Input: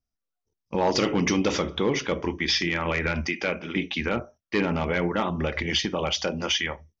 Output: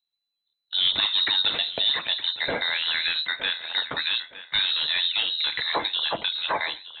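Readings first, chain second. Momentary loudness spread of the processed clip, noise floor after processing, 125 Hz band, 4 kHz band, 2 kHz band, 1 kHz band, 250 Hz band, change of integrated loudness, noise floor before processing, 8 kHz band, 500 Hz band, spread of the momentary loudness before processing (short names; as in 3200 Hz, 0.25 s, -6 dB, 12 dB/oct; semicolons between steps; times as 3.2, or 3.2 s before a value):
6 LU, -83 dBFS, -19.0 dB, +8.5 dB, +1.0 dB, -2.5 dB, -18.0 dB, +2.5 dB, -85 dBFS, n/a, -10.5 dB, 6 LU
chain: on a send: thinning echo 0.914 s, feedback 26%, level -14 dB; on the sum: inverted band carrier 4000 Hz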